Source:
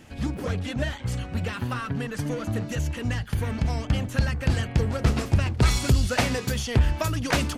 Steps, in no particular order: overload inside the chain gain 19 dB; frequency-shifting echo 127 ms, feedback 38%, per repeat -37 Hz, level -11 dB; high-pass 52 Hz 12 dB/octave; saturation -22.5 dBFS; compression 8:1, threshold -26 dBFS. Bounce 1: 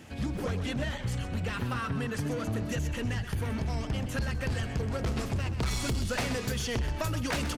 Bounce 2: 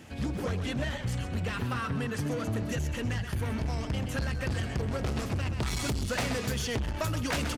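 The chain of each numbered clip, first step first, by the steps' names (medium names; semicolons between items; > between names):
high-pass > overload inside the chain > compression > frequency-shifting echo > saturation; frequency-shifting echo > overload inside the chain > saturation > high-pass > compression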